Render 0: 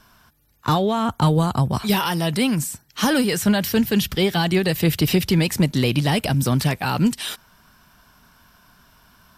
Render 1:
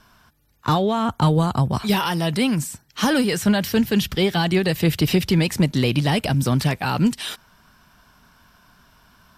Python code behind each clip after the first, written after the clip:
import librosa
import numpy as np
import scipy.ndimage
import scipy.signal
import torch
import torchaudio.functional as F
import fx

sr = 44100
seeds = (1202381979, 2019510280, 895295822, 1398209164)

y = fx.high_shelf(x, sr, hz=10000.0, db=-7.5)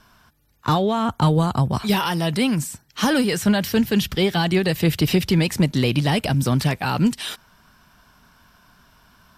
y = x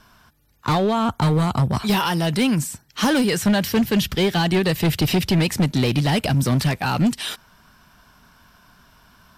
y = np.clip(x, -10.0 ** (-15.0 / 20.0), 10.0 ** (-15.0 / 20.0))
y = y * 10.0 ** (1.5 / 20.0)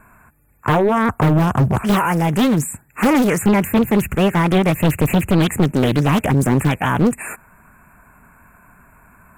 y = fx.brickwall_bandstop(x, sr, low_hz=2700.0, high_hz=6900.0)
y = fx.doppler_dist(y, sr, depth_ms=0.8)
y = y * 10.0 ** (4.5 / 20.0)